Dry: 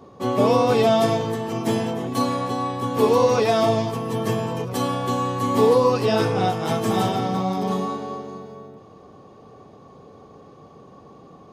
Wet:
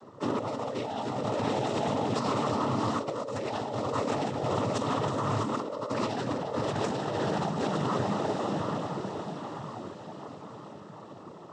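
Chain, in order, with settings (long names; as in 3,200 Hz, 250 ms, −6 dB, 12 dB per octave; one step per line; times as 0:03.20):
feedback delay with all-pass diffusion 715 ms, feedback 53%, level −5 dB
cochlear-implant simulation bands 12
compressor whose output falls as the input rises −24 dBFS, ratio −1
level −6.5 dB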